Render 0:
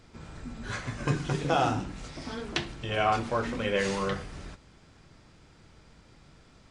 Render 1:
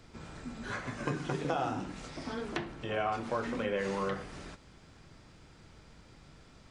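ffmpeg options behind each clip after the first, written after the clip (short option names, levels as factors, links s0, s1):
-filter_complex "[0:a]acrossover=split=160|2000[s0][s1][s2];[s0]acompressor=threshold=0.00316:ratio=4[s3];[s1]acompressor=threshold=0.0316:ratio=4[s4];[s2]acompressor=threshold=0.00316:ratio=4[s5];[s3][s4][s5]amix=inputs=3:normalize=0"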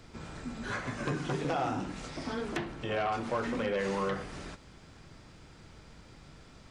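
-af "aeval=exprs='0.141*sin(PI/2*2.24*val(0)/0.141)':c=same,volume=0.398"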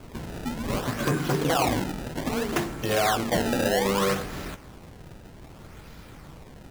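-af "acrusher=samples=23:mix=1:aa=0.000001:lfo=1:lforange=36.8:lforate=0.63,volume=2.51"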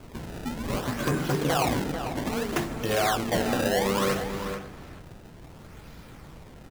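-filter_complex "[0:a]asplit=2[s0][s1];[s1]adelay=443.1,volume=0.398,highshelf=f=4000:g=-9.97[s2];[s0][s2]amix=inputs=2:normalize=0,volume=0.841"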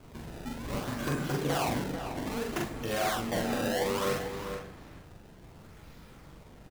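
-filter_complex "[0:a]asplit=2[s0][s1];[s1]adelay=43,volume=0.75[s2];[s0][s2]amix=inputs=2:normalize=0,volume=0.447"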